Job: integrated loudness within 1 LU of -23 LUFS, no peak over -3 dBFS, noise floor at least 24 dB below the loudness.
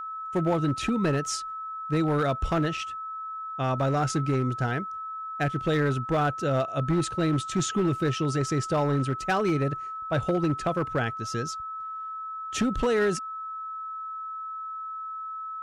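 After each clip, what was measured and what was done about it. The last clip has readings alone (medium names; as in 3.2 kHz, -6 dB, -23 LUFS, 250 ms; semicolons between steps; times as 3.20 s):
clipped samples 1.2%; clipping level -18.5 dBFS; steady tone 1.3 kHz; tone level -33 dBFS; loudness -28.0 LUFS; peak level -18.5 dBFS; loudness target -23.0 LUFS
-> clip repair -18.5 dBFS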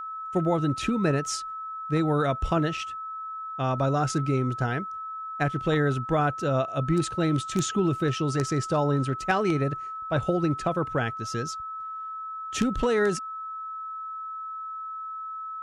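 clipped samples 0.0%; steady tone 1.3 kHz; tone level -33 dBFS
-> band-stop 1.3 kHz, Q 30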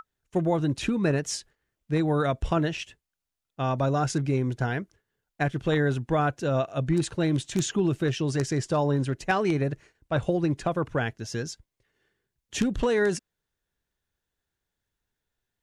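steady tone not found; loudness -27.0 LUFS; peak level -9.0 dBFS; loudness target -23.0 LUFS
-> trim +4 dB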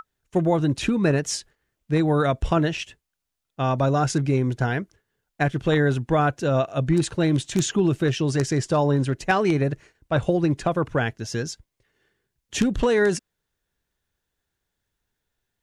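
loudness -23.0 LUFS; peak level -5.0 dBFS; noise floor -82 dBFS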